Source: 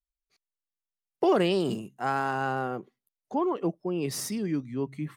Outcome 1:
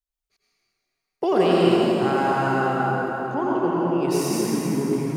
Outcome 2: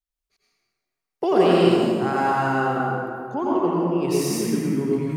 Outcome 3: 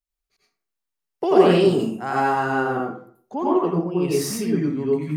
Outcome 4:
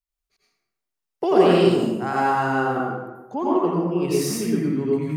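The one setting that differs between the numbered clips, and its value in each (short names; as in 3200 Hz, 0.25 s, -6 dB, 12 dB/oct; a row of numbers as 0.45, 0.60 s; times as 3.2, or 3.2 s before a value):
plate-style reverb, RT60: 4.8, 2.3, 0.51, 1.1 s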